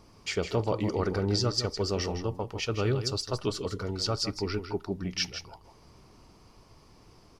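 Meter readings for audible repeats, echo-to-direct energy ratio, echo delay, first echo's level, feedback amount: 1, -9.5 dB, 0.161 s, -9.5 dB, no steady repeat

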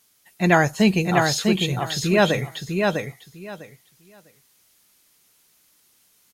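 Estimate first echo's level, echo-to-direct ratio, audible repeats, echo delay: -4.0 dB, -4.0 dB, 3, 0.651 s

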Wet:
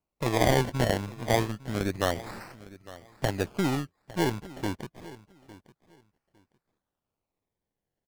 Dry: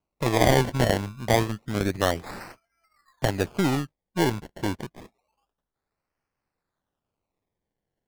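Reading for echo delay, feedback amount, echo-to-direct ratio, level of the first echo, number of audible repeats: 0.856 s, 20%, -18.5 dB, -18.5 dB, 2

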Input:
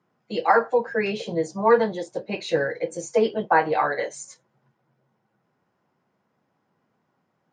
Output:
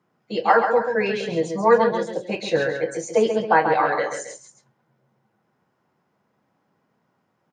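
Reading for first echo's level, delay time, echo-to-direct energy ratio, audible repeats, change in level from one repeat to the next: -7.0 dB, 0.136 s, -6.0 dB, 2, -6.5 dB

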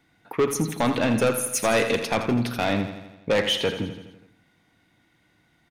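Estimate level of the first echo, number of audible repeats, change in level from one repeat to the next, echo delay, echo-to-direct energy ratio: -10.5 dB, 6, -4.5 dB, 83 ms, -8.5 dB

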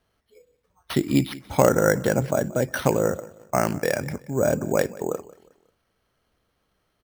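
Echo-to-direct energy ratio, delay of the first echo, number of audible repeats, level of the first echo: -20.0 dB, 0.18 s, 2, -20.5 dB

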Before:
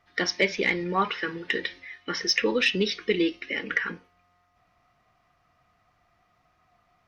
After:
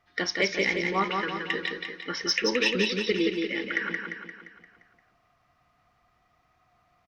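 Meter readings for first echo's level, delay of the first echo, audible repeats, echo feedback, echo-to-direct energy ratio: -4.0 dB, 0.174 s, 6, 52%, -2.5 dB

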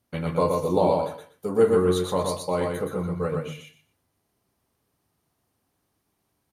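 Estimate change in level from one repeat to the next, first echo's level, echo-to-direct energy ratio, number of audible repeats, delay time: -14.0 dB, -3.5 dB, -3.5 dB, 3, 0.121 s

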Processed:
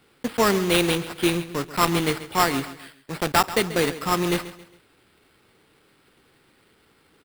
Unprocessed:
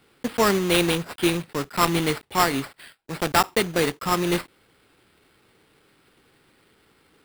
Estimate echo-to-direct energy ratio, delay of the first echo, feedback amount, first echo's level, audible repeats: -14.5 dB, 0.136 s, 37%, -15.0 dB, 3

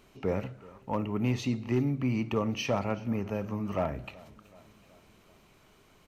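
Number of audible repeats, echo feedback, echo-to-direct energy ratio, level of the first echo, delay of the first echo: 3, 59%, -20.0 dB, -22.0 dB, 0.377 s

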